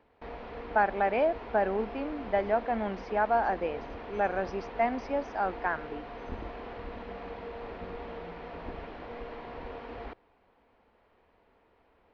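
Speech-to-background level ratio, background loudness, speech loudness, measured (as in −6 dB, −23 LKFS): 12.0 dB, −42.5 LKFS, −30.5 LKFS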